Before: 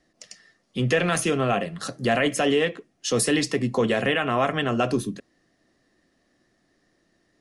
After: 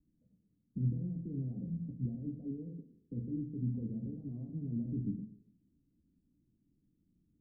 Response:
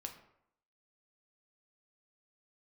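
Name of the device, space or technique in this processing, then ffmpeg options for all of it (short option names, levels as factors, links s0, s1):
club heard from the street: -filter_complex "[0:a]alimiter=limit=0.0794:level=0:latency=1:release=116,lowpass=f=240:w=0.5412,lowpass=f=240:w=1.3066[s0];[1:a]atrim=start_sample=2205[s1];[s0][s1]afir=irnorm=-1:irlink=0,volume=1.26"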